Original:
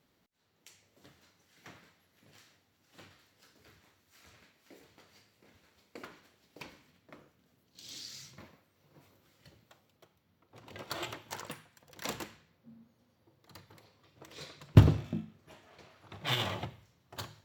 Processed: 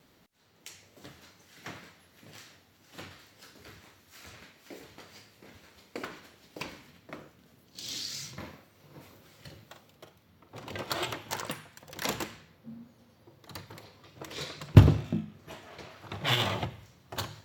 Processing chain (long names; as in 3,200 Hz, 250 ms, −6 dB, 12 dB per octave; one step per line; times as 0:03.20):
in parallel at +2 dB: downward compressor, threshold −45 dBFS, peak gain reduction 30 dB
on the sum: tape wow and flutter 50 cents
0:08.38–0:10.64: double-tracking delay 47 ms −9 dB
level +3 dB